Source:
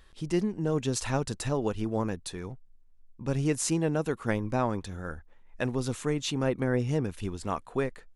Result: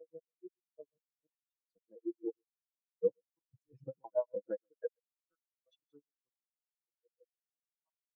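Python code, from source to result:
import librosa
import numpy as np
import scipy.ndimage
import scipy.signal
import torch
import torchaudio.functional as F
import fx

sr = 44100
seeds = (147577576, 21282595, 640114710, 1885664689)

y = fx.block_reorder(x, sr, ms=101.0, group=8)
y = fx.doppler_pass(y, sr, speed_mps=12, closest_m=2.1, pass_at_s=3.36)
y = fx.highpass(y, sr, hz=610.0, slope=6)
y = y + 0.66 * np.pad(y, (int(6.1 * sr / 1000.0), 0))[:len(y)]
y = fx.over_compress(y, sr, threshold_db=-46.0, ratio=-1.0)
y = fx.quant_dither(y, sr, seeds[0], bits=8, dither='none')
y = fx.harmonic_tremolo(y, sr, hz=6.2, depth_pct=100, crossover_hz=2200.0)
y = y + 10.0 ** (-12.5 / 20.0) * np.pad(y, (int(127 * sr / 1000.0), 0))[:len(y)]
y = fx.spectral_expand(y, sr, expansion=4.0)
y = y * librosa.db_to_amplitude(10.0)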